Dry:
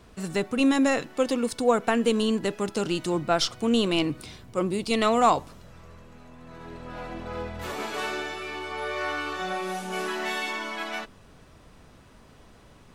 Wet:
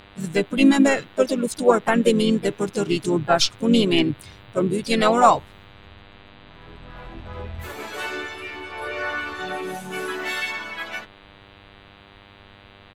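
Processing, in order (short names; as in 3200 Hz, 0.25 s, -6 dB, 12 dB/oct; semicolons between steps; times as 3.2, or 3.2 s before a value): per-bin expansion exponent 1.5; buzz 100 Hz, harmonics 40, -56 dBFS -2 dB/oct; harmoniser -5 st -16 dB, -4 st -11 dB, +3 st -11 dB; gain +6.5 dB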